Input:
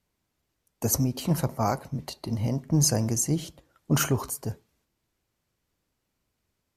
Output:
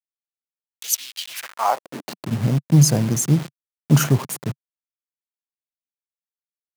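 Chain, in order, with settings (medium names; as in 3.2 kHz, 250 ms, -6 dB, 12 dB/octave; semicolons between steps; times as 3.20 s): send-on-delta sampling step -30.5 dBFS; high-pass sweep 3.1 kHz -> 140 Hz, 1.28–2.24 s; trim +3.5 dB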